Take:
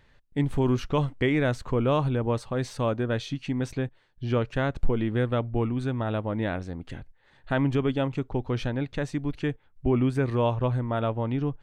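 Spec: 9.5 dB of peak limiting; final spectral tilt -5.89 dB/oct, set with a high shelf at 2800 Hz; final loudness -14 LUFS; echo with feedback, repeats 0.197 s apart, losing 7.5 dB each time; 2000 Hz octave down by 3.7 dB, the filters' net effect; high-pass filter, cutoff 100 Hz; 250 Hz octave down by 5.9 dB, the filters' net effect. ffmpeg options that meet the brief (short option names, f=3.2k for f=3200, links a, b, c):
-af "highpass=100,equalizer=f=250:t=o:g=-7,equalizer=f=2k:t=o:g=-8,highshelf=f=2.8k:g=8,alimiter=limit=-23.5dB:level=0:latency=1,aecho=1:1:197|394|591|788|985:0.422|0.177|0.0744|0.0312|0.0131,volume=19dB"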